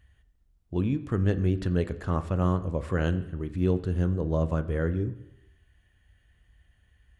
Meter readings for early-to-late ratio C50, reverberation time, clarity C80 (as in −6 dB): 14.5 dB, 0.85 s, 17.0 dB